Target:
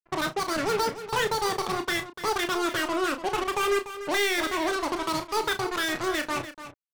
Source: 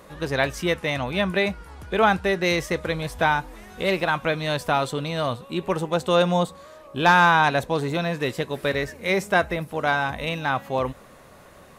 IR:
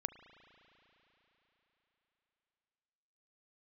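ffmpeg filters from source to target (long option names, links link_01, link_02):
-filter_complex "[0:a]agate=range=-33dB:threshold=-45dB:ratio=3:detection=peak,afftfilt=real='re*gte(hypot(re,im),0.0631)':imag='im*gte(hypot(re,im),0.0631)':win_size=1024:overlap=0.75,aemphasis=mode=reproduction:type=riaa,acrossover=split=3800[link_01][link_02];[link_02]acompressor=threshold=-58dB:ratio=4:attack=1:release=60[link_03];[link_01][link_03]amix=inputs=2:normalize=0,highshelf=frequency=10000:gain=-7.5,acrossover=split=160|1000[link_04][link_05][link_06];[link_04]acompressor=threshold=-33dB:ratio=4[link_07];[link_05]acompressor=threshold=-20dB:ratio=4[link_08];[link_06]acompressor=threshold=-23dB:ratio=4[link_09];[link_07][link_08][link_09]amix=inputs=3:normalize=0,asetrate=58866,aresample=44100,atempo=0.749154,asoftclip=type=hard:threshold=-19dB,asetrate=74970,aresample=44100,acrusher=bits=3:mix=0:aa=0.5,asplit=2[link_10][link_11];[link_11]adelay=32,volume=-9dB[link_12];[link_10][link_12]amix=inputs=2:normalize=0,asplit=2[link_13][link_14];[link_14]aecho=0:1:40|293:0.188|0.251[link_15];[link_13][link_15]amix=inputs=2:normalize=0,volume=-5dB"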